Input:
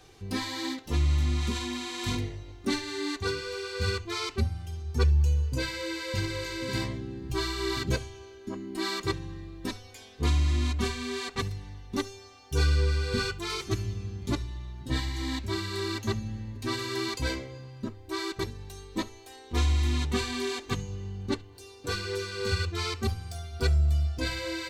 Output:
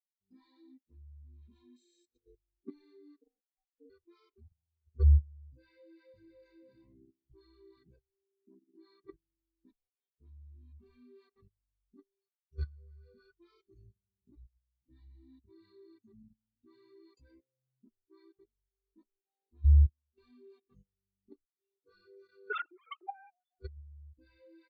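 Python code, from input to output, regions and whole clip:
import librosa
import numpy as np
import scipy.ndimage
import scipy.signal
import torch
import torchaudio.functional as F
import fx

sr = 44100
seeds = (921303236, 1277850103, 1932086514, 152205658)

y = fx.chain(x, sr, fx.curve_eq(hz=(180.0, 290.0, 440.0, 660.0, 1100.0, 1600.0, 2900.0, 8200.0, 12000.0), db=(0, -7, 11, -5, -21, -1, 1, 15, -10)),
    fx.over_compress(threshold_db=-36.0, ratio=-1.0), at=(1.76, 2.35))
y = fx.chain(y, sr, fx.cvsd(bps=16000),
    fx.bandpass_q(hz=110.0, q=1.1),
    fx.ring_mod(carrier_hz=370.0), at=(3.21, 3.9))
y = fx.chain(y, sr, fx.low_shelf(hz=84.0, db=9.0),
    fx.level_steps(step_db=20), at=(19.65, 20.18))
y = fx.chain(y, sr, fx.sine_speech(),
    fx.transient(attack_db=-5, sustain_db=11), at=(22.5, 23.59))
y = fx.peak_eq(y, sr, hz=95.0, db=-10.5, octaves=0.79)
y = fx.level_steps(y, sr, step_db=13)
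y = fx.spectral_expand(y, sr, expansion=2.5)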